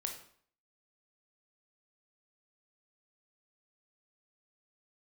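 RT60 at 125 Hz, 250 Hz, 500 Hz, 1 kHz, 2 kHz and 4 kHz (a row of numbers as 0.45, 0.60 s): 0.55, 0.55, 0.55, 0.55, 0.50, 0.45 s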